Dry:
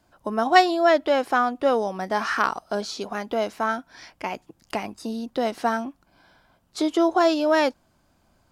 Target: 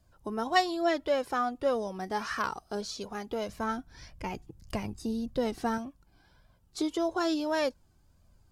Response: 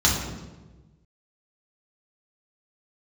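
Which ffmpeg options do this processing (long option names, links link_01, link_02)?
-filter_complex "[0:a]asettb=1/sr,asplit=3[link_01][link_02][link_03];[link_01]atrim=end=3.494[link_04];[link_02]atrim=start=3.49:end=5.78,asetpts=PTS-STARTPTS,afade=type=in:duration=0.004:curve=qsin,afade=type=out:start_time=2.286:duration=0.004:curve=qsin,lowshelf=frequency=200:gain=11.5[link_05];[link_03]atrim=start=5.776[link_06];[link_04][link_05]acrossfade=duration=0.004:curve1=hsin:curve2=qsin[link_07];[link_07][link_06]acrossfade=duration=0.004:curve1=qsin:curve2=hsin,flanger=delay=1.6:depth=1.1:regen=29:speed=1.7:shape=triangular,bass=frequency=250:gain=13,treble=frequency=4000:gain=6,volume=-6dB"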